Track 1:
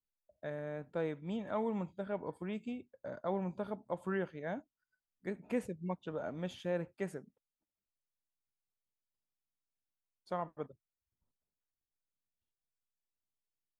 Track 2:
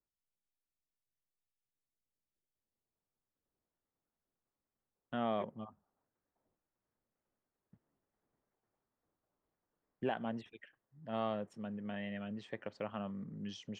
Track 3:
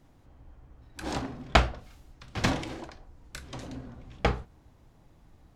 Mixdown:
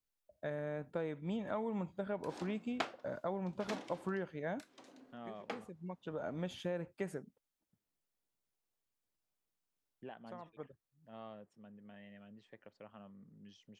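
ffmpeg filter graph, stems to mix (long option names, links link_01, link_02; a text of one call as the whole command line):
ffmpeg -i stem1.wav -i stem2.wav -i stem3.wav -filter_complex "[0:a]acompressor=threshold=-37dB:ratio=6,volume=2.5dB[link_01];[1:a]volume=-13.5dB,asplit=2[link_02][link_03];[2:a]highpass=frequency=240:width=0.5412,highpass=frequency=240:width=1.3066,adelay=1250,volume=-16dB[link_04];[link_03]apad=whole_len=608437[link_05];[link_01][link_05]sidechaincompress=threshold=-57dB:ratio=10:attack=42:release=1020[link_06];[link_06][link_02][link_04]amix=inputs=3:normalize=0" out.wav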